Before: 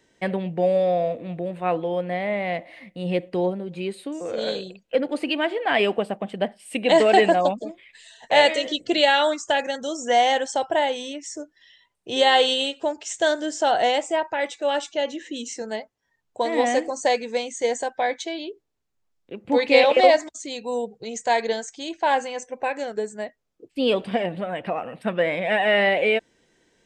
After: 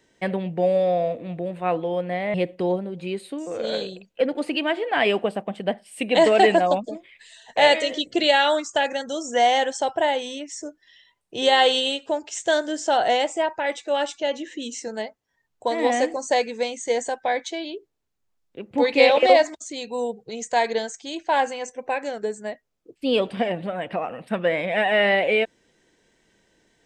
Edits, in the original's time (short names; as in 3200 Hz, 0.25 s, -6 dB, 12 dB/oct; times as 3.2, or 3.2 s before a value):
2.34–3.08 cut